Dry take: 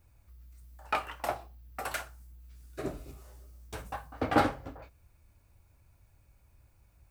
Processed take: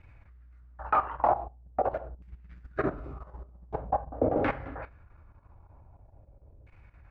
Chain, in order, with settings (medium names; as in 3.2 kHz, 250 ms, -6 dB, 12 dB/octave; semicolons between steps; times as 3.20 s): sine folder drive 8 dB, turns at -10.5 dBFS; level held to a coarse grid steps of 13 dB; LFO low-pass saw down 0.45 Hz 480–2300 Hz; trim -1 dB